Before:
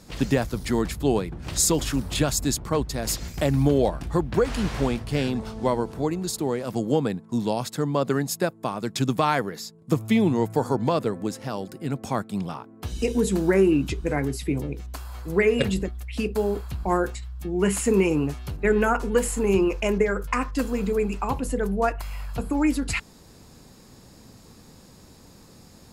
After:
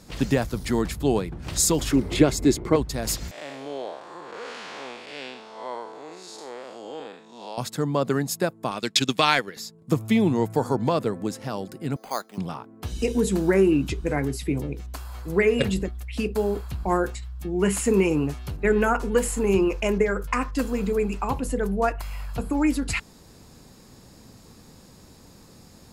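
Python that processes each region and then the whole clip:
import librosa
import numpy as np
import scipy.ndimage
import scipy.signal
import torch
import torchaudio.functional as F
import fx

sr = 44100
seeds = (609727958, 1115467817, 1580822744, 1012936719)

y = fx.chain(x, sr, fx.high_shelf(hz=7700.0, db=-10.5),
    fx.small_body(hz=(370.0, 2100.0), ring_ms=25, db=14), at=(1.91, 2.76))
y = fx.chain(y, sr, fx.spec_blur(span_ms=192.0),
    fx.bandpass_edges(low_hz=700.0, high_hz=6000.0), at=(3.31, 7.58))
y = fx.chain(y, sr, fx.weighting(curve='D'),
    fx.transient(attack_db=1, sustain_db=-8), at=(8.71, 9.57))
y = fx.chain(y, sr, fx.bandpass_edges(low_hz=540.0, high_hz=2600.0),
    fx.resample_bad(factor=8, down='none', up='hold'), at=(11.96, 12.38))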